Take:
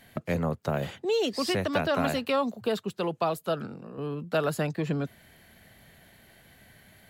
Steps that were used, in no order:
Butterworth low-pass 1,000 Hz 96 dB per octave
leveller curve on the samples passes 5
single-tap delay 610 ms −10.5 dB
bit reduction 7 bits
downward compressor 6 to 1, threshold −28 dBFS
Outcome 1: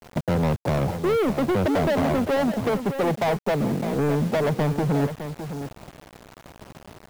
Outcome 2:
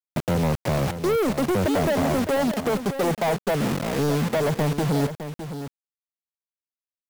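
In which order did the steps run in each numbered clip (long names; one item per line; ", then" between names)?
Butterworth low-pass, then downward compressor, then leveller curve on the samples, then single-tap delay, then bit reduction
Butterworth low-pass, then bit reduction, then downward compressor, then leveller curve on the samples, then single-tap delay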